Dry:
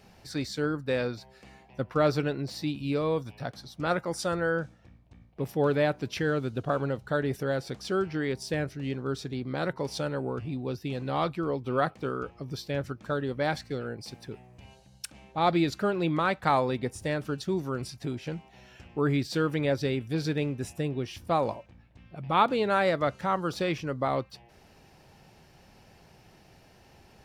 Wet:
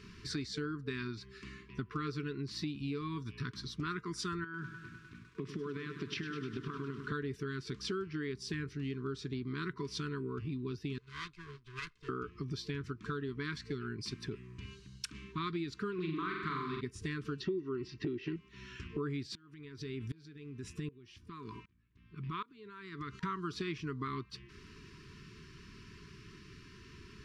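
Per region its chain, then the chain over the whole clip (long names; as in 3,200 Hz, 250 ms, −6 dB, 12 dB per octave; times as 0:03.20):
0:04.44–0:07.12: band-pass filter 140–5,200 Hz + downward compressor 8 to 1, threshold −34 dBFS + feedback echo at a low word length 101 ms, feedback 80%, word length 10 bits, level −11 dB
0:10.98–0:12.09: lower of the sound and its delayed copy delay 1.9 ms + guitar amp tone stack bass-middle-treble 5-5-5 + expander for the loud parts, over −57 dBFS
0:15.94–0:16.81: low-pass filter 7,200 Hz + flutter between parallel walls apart 7.5 metres, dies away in 0.83 s + highs frequency-modulated by the lows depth 0.11 ms
0:17.40–0:18.36: low-pass filter 5,500 Hz 24 dB per octave + hollow resonant body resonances 350/790/1,900/2,700 Hz, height 15 dB, ringing for 25 ms
0:19.35–0:23.23: downward compressor, threshold −33 dBFS + tremolo with a ramp in dB swelling 1.3 Hz, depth 26 dB
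whole clip: low-pass filter 6,100 Hz 12 dB per octave; brick-wall band-stop 450–960 Hz; downward compressor 6 to 1, threshold −40 dBFS; level +4 dB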